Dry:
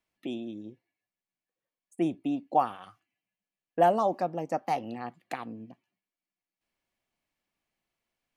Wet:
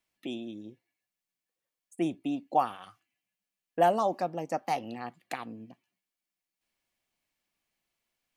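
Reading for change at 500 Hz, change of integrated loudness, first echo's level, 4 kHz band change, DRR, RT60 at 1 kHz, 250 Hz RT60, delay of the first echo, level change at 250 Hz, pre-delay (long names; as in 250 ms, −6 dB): −1.5 dB, −1.0 dB, no echo audible, +2.5 dB, no reverb audible, no reverb audible, no reverb audible, no echo audible, −2.0 dB, no reverb audible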